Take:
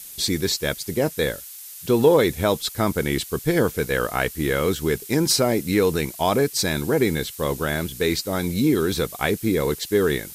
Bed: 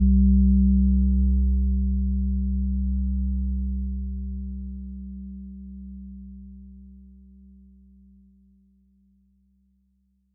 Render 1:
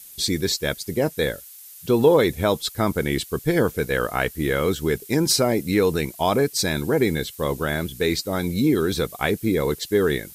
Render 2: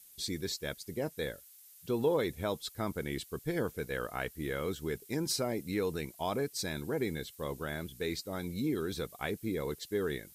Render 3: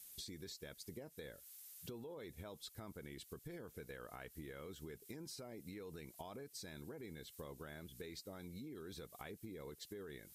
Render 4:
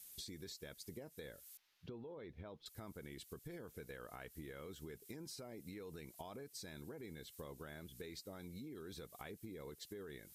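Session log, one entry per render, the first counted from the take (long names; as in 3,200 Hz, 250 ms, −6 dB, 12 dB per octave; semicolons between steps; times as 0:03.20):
broadband denoise 6 dB, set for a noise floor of −39 dBFS
level −13.5 dB
brickwall limiter −29 dBFS, peak gain reduction 11 dB; downward compressor 12 to 1, threshold −47 dBFS, peak gain reduction 14.5 dB
0:01.57–0:02.66: high-frequency loss of the air 280 metres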